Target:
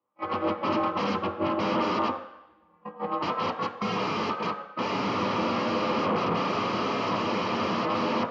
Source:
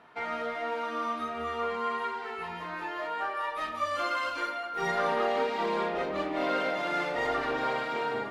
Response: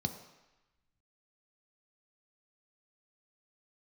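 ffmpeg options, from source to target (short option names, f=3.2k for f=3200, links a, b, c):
-filter_complex "[0:a]asettb=1/sr,asplit=3[a][b][c];[a]atrim=end=1.224[d];[b]atrim=start=1.22:end=3.24,asetpts=PTS-STARTPTS,afade=t=in:d=0.004:c=qsin,afade=t=out:st=2.016:d=0.004:c=qsin,tiltshelf=f=890:g=4[e];[c]atrim=start=3.236[f];[d][e]acrossfade=d=0.004:c1=hsin:c2=qsin[g];[g][f]acrossfade=d=0.004:c1=qsin:c2=hsin,agate=range=-53dB:threshold=-30dB:ratio=16:detection=peak,alimiter=level_in=3.5dB:limit=-24dB:level=0:latency=1,volume=-3.5dB,asoftclip=type=hard:threshold=-32.5dB,aeval=exprs='val(0)*sin(2*PI*140*n/s)':c=same,aeval=exprs='0.0237*sin(PI/2*5.62*val(0)/0.0237)':c=same,highpass=120,equalizer=f=140:t=q:w=4:g=-8,equalizer=f=500:t=q:w=4:g=9,equalizer=f=1.2k:t=q:w=4:g=9,lowpass=f=3.6k:w=0.5412,lowpass=f=3.6k:w=1.3066[h];[1:a]atrim=start_sample=2205,asetrate=52920,aresample=44100[i];[h][i]afir=irnorm=-1:irlink=0,volume=4.5dB"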